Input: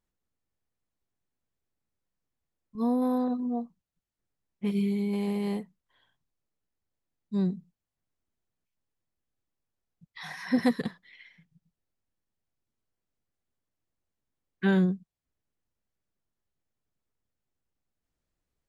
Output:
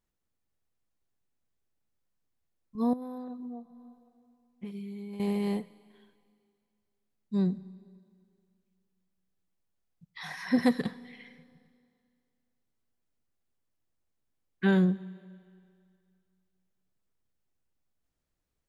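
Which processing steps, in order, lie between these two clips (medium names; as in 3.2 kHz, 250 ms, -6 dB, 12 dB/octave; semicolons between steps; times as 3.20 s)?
Schroeder reverb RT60 2.3 s, combs from 29 ms, DRR 18 dB; 2.93–5.20 s: compression 6:1, threshold -39 dBFS, peak gain reduction 14 dB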